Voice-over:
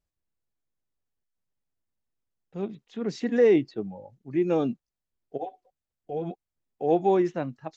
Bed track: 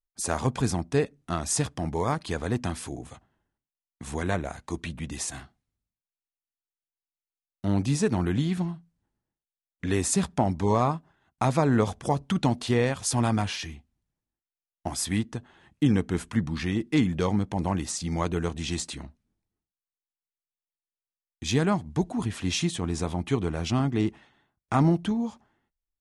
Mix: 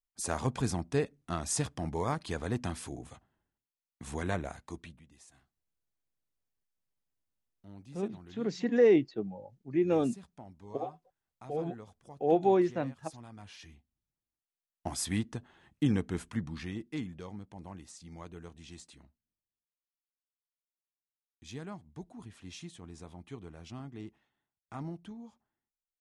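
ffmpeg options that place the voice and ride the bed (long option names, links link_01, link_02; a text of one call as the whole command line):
ffmpeg -i stem1.wav -i stem2.wav -filter_complex "[0:a]adelay=5400,volume=-3dB[link_01];[1:a]volume=15dB,afade=type=out:start_time=4.46:duration=0.58:silence=0.1,afade=type=in:start_time=13.36:duration=1.37:silence=0.0944061,afade=type=out:start_time=15.73:duration=1.5:silence=0.199526[link_02];[link_01][link_02]amix=inputs=2:normalize=0" out.wav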